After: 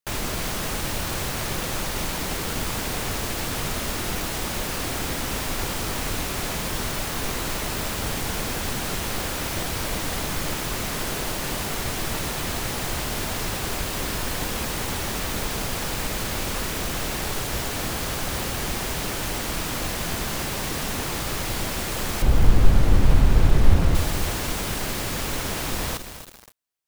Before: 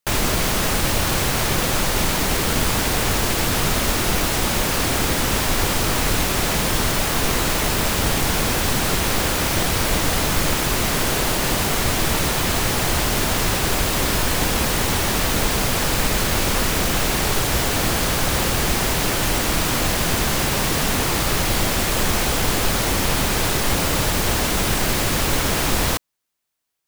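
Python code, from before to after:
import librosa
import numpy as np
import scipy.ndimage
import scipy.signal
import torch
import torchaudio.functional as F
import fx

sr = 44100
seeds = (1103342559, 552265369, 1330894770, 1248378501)

y = fx.riaa(x, sr, side='playback', at=(22.22, 23.95))
y = fx.echo_crushed(y, sr, ms=274, feedback_pct=55, bits=4, wet_db=-8)
y = y * librosa.db_to_amplitude(-8.0)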